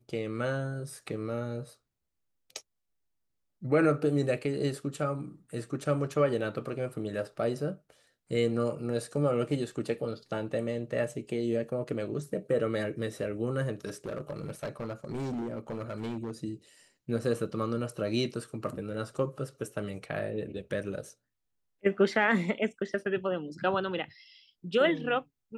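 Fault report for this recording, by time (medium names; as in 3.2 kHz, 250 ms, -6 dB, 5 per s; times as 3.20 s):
13.86–16.31 s: clipped -31 dBFS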